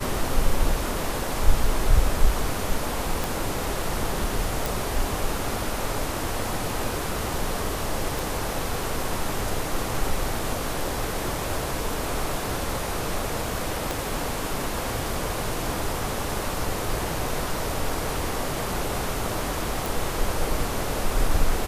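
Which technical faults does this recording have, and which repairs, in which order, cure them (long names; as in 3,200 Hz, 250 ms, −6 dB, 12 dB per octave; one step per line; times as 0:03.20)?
0:03.24: click
0:04.66: click
0:08.19: click
0:13.91: click
0:19.86: click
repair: click removal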